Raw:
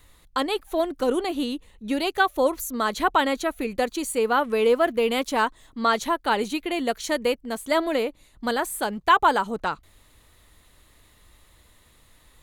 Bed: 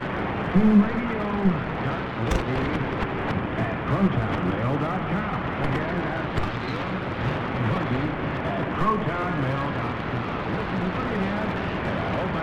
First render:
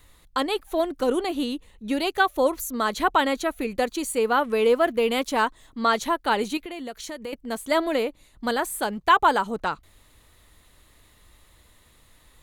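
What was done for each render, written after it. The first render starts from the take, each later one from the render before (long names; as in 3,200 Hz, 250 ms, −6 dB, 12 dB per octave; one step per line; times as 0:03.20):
0:06.57–0:07.33: downward compressor 3 to 1, threshold −34 dBFS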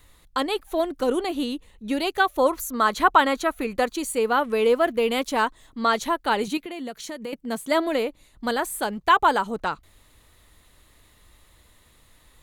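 0:02.38–0:03.92: parametric band 1,200 Hz +6 dB 1 octave
0:06.47–0:07.89: low shelf with overshoot 120 Hz −9 dB, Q 3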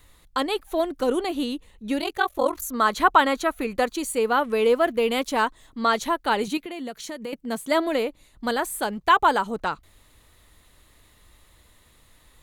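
0:02.00–0:02.62: ring modulation 22 Hz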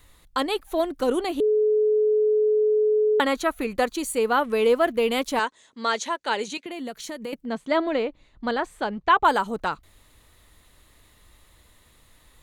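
0:01.40–0:03.20: beep over 427 Hz −17 dBFS
0:05.39–0:06.66: loudspeaker in its box 300–8,600 Hz, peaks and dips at 310 Hz −8 dB, 740 Hz −6 dB, 1,200 Hz −6 dB, 6,500 Hz +5 dB
0:07.45–0:09.25: high-frequency loss of the air 150 metres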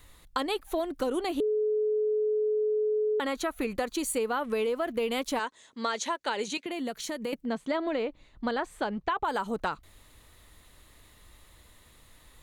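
brickwall limiter −14.5 dBFS, peak gain reduction 7.5 dB
downward compressor, threshold −26 dBFS, peak gain reduction 7.5 dB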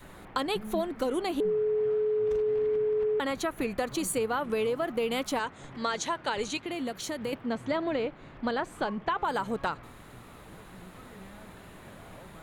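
mix in bed −22 dB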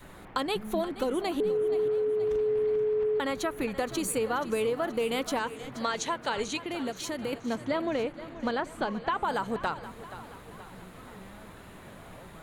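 echo with a time of its own for lows and highs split 320 Hz, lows 350 ms, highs 477 ms, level −14 dB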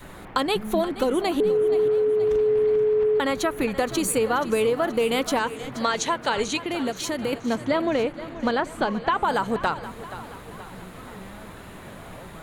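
level +6.5 dB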